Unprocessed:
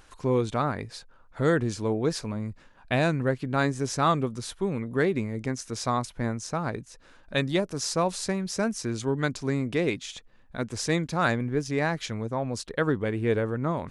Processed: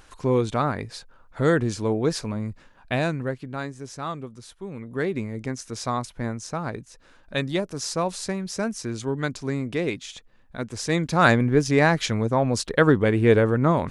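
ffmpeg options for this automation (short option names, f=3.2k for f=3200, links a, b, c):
-af "volume=19.5dB,afade=t=out:st=2.5:d=1.2:silence=0.266073,afade=t=in:st=4.63:d=0.59:silence=0.375837,afade=t=in:st=10.85:d=0.45:silence=0.398107"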